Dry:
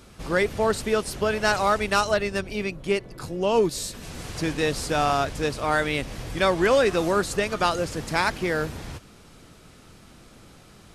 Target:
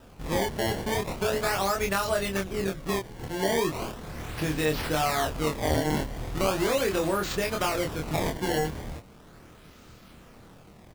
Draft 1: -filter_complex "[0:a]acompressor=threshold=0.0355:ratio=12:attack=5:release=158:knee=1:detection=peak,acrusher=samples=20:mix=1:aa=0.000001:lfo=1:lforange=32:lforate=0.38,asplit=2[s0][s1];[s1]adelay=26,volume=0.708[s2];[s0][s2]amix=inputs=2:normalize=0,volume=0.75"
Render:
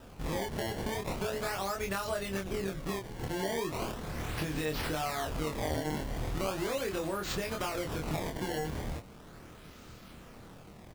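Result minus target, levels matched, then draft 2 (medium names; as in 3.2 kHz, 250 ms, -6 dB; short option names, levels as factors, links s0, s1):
compression: peak gain reduction +8 dB
-filter_complex "[0:a]acompressor=threshold=0.1:ratio=12:attack=5:release=158:knee=1:detection=peak,acrusher=samples=20:mix=1:aa=0.000001:lfo=1:lforange=32:lforate=0.38,asplit=2[s0][s1];[s1]adelay=26,volume=0.708[s2];[s0][s2]amix=inputs=2:normalize=0,volume=0.75"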